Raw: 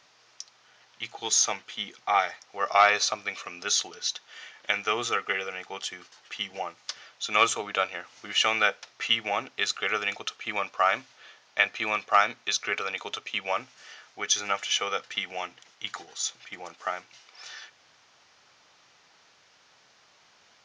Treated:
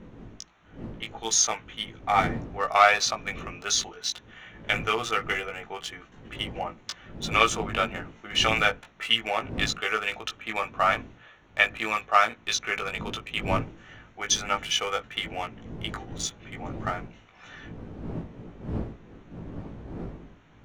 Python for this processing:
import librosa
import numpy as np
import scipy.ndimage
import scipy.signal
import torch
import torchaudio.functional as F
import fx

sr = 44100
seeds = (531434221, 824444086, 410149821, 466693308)

y = fx.wiener(x, sr, points=9)
y = fx.dmg_wind(y, sr, seeds[0], corner_hz=260.0, level_db=-41.0)
y = fx.doubler(y, sr, ms=18.0, db=-4.0)